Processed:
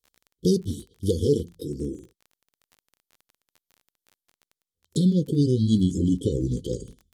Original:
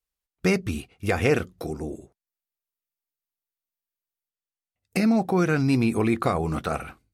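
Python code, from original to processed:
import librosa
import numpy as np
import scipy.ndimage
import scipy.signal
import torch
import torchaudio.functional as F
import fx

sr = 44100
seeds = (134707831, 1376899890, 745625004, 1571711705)

y = fx.pitch_glide(x, sr, semitones=-4.5, runs='starting unshifted')
y = fx.brickwall_bandstop(y, sr, low_hz=530.0, high_hz=3000.0)
y = fx.dmg_crackle(y, sr, seeds[0], per_s=25.0, level_db=-43.0)
y = y * librosa.db_to_amplitude(2.5)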